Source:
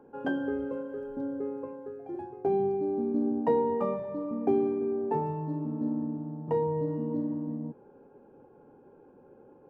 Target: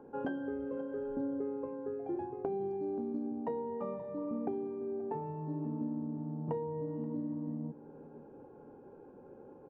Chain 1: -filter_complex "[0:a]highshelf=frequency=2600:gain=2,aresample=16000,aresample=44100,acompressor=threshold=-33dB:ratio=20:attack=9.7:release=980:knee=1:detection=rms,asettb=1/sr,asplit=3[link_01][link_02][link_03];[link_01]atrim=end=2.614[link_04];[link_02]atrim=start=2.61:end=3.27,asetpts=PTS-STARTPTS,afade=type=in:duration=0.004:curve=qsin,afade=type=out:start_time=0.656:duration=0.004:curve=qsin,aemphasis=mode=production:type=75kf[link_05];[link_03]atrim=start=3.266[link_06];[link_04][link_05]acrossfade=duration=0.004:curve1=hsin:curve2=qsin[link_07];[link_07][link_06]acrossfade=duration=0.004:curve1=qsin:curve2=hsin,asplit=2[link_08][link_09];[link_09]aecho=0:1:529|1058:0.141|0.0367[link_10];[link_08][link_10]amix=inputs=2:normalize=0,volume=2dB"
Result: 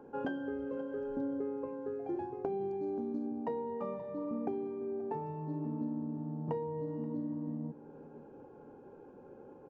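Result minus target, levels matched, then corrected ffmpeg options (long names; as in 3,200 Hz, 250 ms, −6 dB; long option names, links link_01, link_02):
4,000 Hz band +5.5 dB
-filter_complex "[0:a]highshelf=frequency=2600:gain=-8,aresample=16000,aresample=44100,acompressor=threshold=-33dB:ratio=20:attack=9.7:release=980:knee=1:detection=rms,asettb=1/sr,asplit=3[link_01][link_02][link_03];[link_01]atrim=end=2.614[link_04];[link_02]atrim=start=2.61:end=3.27,asetpts=PTS-STARTPTS,afade=type=in:duration=0.004:curve=qsin,afade=type=out:start_time=0.656:duration=0.004:curve=qsin,aemphasis=mode=production:type=75kf[link_05];[link_03]atrim=start=3.266[link_06];[link_04][link_05]acrossfade=duration=0.004:curve1=hsin:curve2=qsin[link_07];[link_07][link_06]acrossfade=duration=0.004:curve1=qsin:curve2=hsin,asplit=2[link_08][link_09];[link_09]aecho=0:1:529|1058:0.141|0.0367[link_10];[link_08][link_10]amix=inputs=2:normalize=0,volume=2dB"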